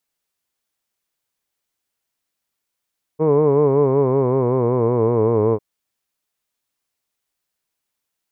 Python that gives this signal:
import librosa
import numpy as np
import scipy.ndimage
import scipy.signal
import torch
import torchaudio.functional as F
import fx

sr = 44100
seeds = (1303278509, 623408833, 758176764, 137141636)

y = fx.vowel(sr, seeds[0], length_s=2.4, word='hood', hz=152.0, glide_st=-6.0, vibrato_hz=5.3, vibrato_st=0.9)